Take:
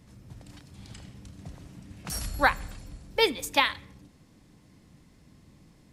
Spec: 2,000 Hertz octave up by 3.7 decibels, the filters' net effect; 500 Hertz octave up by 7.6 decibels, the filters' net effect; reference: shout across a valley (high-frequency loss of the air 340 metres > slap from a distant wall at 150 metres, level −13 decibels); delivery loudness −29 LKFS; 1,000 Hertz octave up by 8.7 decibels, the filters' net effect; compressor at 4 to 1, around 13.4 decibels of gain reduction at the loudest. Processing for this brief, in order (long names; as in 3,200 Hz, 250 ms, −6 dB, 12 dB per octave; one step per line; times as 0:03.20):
parametric band 500 Hz +7.5 dB
parametric band 1,000 Hz +9 dB
parametric band 2,000 Hz +5 dB
downward compressor 4 to 1, threshold −25 dBFS
high-frequency loss of the air 340 metres
slap from a distant wall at 150 metres, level −13 dB
level +7 dB